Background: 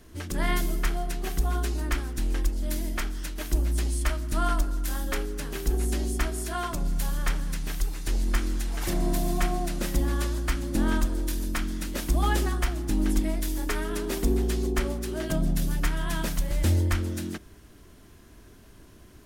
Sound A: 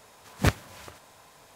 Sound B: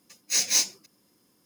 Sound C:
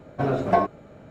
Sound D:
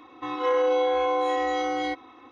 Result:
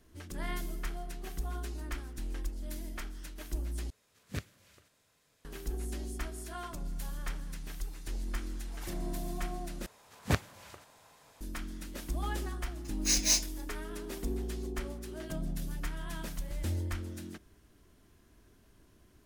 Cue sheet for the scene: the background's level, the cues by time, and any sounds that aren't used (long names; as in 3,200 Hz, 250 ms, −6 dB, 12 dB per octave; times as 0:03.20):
background −11 dB
0:03.90: overwrite with A −14.5 dB + parametric band 860 Hz −12 dB 0.91 octaves
0:09.86: overwrite with A −6 dB
0:12.75: mix in B −4.5 dB
not used: C, D